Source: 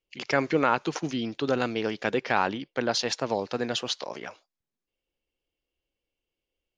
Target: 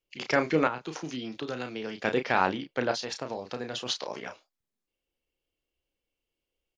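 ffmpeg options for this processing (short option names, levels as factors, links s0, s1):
-filter_complex "[0:a]asplit=3[s0][s1][s2];[s0]afade=t=out:st=2.91:d=0.02[s3];[s1]acompressor=threshold=0.0316:ratio=6,afade=t=in:st=2.91:d=0.02,afade=t=out:st=3.85:d=0.02[s4];[s2]afade=t=in:st=3.85:d=0.02[s5];[s3][s4][s5]amix=inputs=3:normalize=0,asplit=2[s6][s7];[s7]adelay=32,volume=0.422[s8];[s6][s8]amix=inputs=2:normalize=0,asettb=1/sr,asplit=3[s9][s10][s11];[s9]atrim=end=0.674[s12];[s10]atrim=start=0.67:end=2.04,asetpts=PTS-STARTPTS,afade=t=in:d=0.004:c=qsin,afade=t=out:st=1.366:d=0.004:c=qsin,acrossover=split=170|1300[s13][s14][s15];[s13]acompressor=threshold=0.00447:ratio=4[s16];[s14]acompressor=threshold=0.02:ratio=4[s17];[s15]acompressor=threshold=0.0112:ratio=4[s18];[s16][s17][s18]amix=inputs=3:normalize=0[s19];[s11]atrim=start=2.036[s20];[s12][s19]acrossfade=d=0.004:c1=hsin:c2=qsin[s21];[s21][s20]acrossfade=d=0.004:c1=qsin:c2=hsin,volume=0.891"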